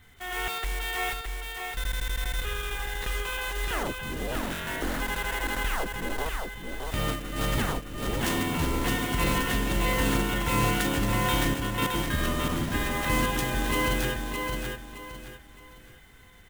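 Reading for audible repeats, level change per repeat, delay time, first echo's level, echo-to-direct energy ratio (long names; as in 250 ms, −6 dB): 3, −10.0 dB, 616 ms, −4.5 dB, −4.0 dB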